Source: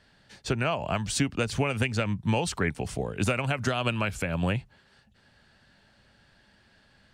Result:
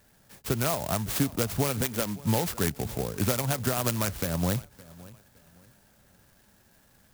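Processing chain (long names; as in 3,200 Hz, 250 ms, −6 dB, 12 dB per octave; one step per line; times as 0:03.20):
0:01.81–0:02.22: high-pass filter 190 Hz
feedback echo with a low-pass in the loop 564 ms, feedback 30%, low-pass 4,700 Hz, level −20.5 dB
converter with an unsteady clock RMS 0.11 ms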